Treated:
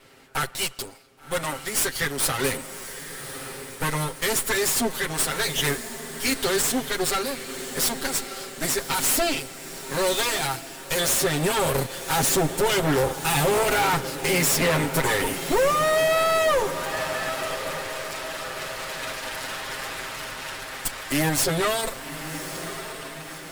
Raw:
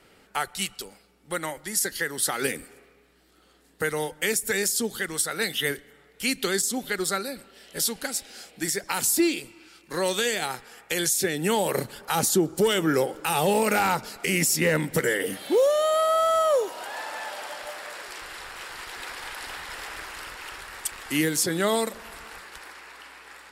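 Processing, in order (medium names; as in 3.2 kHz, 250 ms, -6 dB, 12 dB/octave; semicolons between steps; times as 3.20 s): comb filter that takes the minimum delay 7.5 ms; hard clipper -23.5 dBFS, distortion -11 dB; on a send: echo that smears into a reverb 1119 ms, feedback 52%, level -11 dB; on the sum: trim +5.5 dB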